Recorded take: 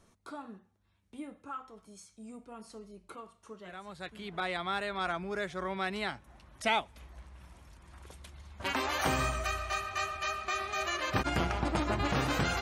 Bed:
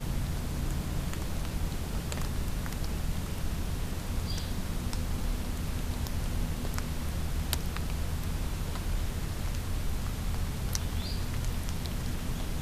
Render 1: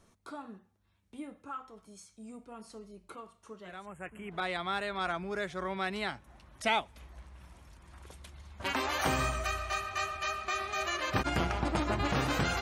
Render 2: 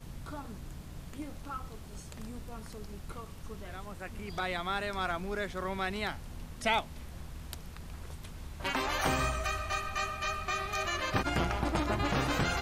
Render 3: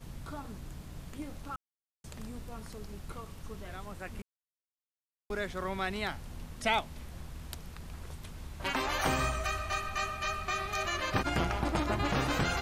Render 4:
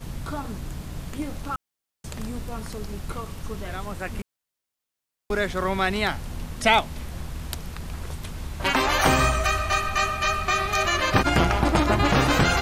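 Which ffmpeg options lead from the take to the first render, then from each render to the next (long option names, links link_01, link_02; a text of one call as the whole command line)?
ffmpeg -i in.wav -filter_complex "[0:a]asplit=3[link_01][link_02][link_03];[link_01]afade=type=out:start_time=3.85:duration=0.02[link_04];[link_02]asuperstop=centerf=4600:order=12:qfactor=1.1,afade=type=in:start_time=3.85:duration=0.02,afade=type=out:start_time=4.3:duration=0.02[link_05];[link_03]afade=type=in:start_time=4.3:duration=0.02[link_06];[link_04][link_05][link_06]amix=inputs=3:normalize=0" out.wav
ffmpeg -i in.wav -i bed.wav -filter_complex "[1:a]volume=-12.5dB[link_01];[0:a][link_01]amix=inputs=2:normalize=0" out.wav
ffmpeg -i in.wav -filter_complex "[0:a]asplit=5[link_01][link_02][link_03][link_04][link_05];[link_01]atrim=end=1.56,asetpts=PTS-STARTPTS,afade=type=out:start_time=1.556:duration=0.004:curve=hsin[link_06];[link_02]atrim=start=1.56:end=2.04,asetpts=PTS-STARTPTS,volume=0[link_07];[link_03]atrim=start=2.04:end=4.22,asetpts=PTS-STARTPTS,afade=type=in:duration=0.004:curve=hsin,afade=type=out:start_time=2.176:duration=0.004:curve=hsin[link_08];[link_04]atrim=start=4.22:end=5.3,asetpts=PTS-STARTPTS,volume=0[link_09];[link_05]atrim=start=5.3,asetpts=PTS-STARTPTS,afade=type=in:duration=0.004:curve=hsin[link_10];[link_06][link_07][link_08][link_09][link_10]concat=n=5:v=0:a=1" out.wav
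ffmpeg -i in.wav -af "volume=10.5dB" out.wav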